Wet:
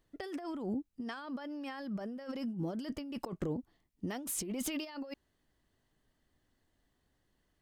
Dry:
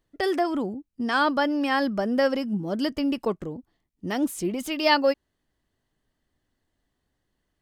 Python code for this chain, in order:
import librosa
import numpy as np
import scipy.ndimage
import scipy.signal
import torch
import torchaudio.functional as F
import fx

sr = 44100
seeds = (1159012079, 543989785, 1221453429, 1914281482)

y = fx.over_compress(x, sr, threshold_db=-33.0, ratio=-1.0)
y = F.gain(torch.from_numpy(y), -7.0).numpy()